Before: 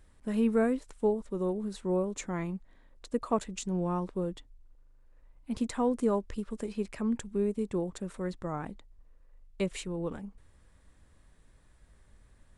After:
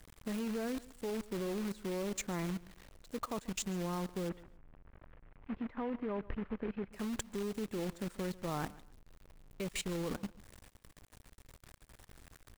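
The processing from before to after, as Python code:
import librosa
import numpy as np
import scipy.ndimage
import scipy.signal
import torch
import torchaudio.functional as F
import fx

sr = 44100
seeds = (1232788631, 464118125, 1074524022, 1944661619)

y = fx.quant_companded(x, sr, bits=4)
y = fx.lowpass(y, sr, hz=2400.0, slope=24, at=(4.28, 6.92), fade=0.02)
y = fx.level_steps(y, sr, step_db=20)
y = fx.echo_feedback(y, sr, ms=139, feedback_pct=26, wet_db=-20.0)
y = F.gain(torch.from_numpy(y), 3.5).numpy()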